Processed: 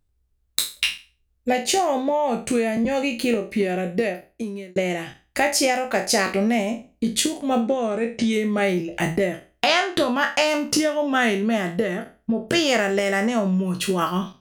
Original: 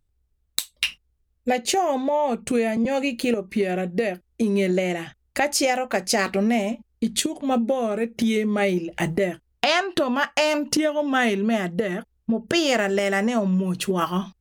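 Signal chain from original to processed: spectral trails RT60 0.33 s; 4.04–4.76 fade out; 7.61–8.33 steep low-pass 9200 Hz 96 dB/oct

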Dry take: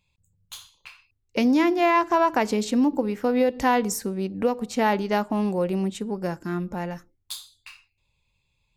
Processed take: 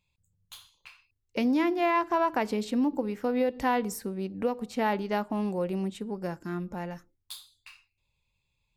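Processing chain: dynamic EQ 6600 Hz, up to -7 dB, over -52 dBFS, Q 1.8; gain -5.5 dB

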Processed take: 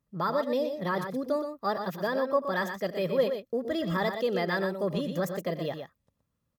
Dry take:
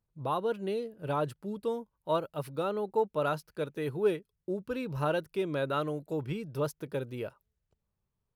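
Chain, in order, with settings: in parallel at -1.5 dB: limiter -27 dBFS, peak gain reduction 10 dB; on the sum: varispeed +27%; notch comb 750 Hz; tapped delay 88/121 ms -17.5/-7.5 dB

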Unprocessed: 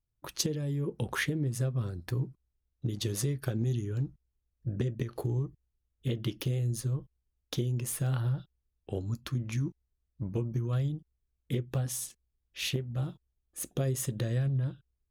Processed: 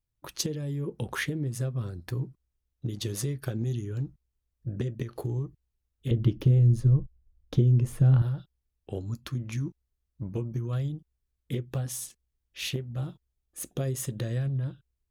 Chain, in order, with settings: 6.11–8.22 tilt -3.5 dB/oct

